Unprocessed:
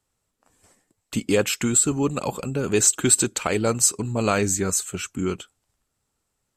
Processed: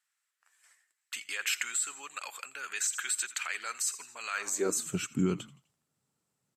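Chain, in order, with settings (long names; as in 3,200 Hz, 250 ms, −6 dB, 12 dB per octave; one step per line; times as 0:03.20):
echo with shifted repeats 84 ms, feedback 47%, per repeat −76 Hz, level −20.5 dB
brickwall limiter −16 dBFS, peak gain reduction 12 dB
high-pass filter sweep 1,700 Hz → 150 Hz, 0:04.33–0:04.85
level −5.5 dB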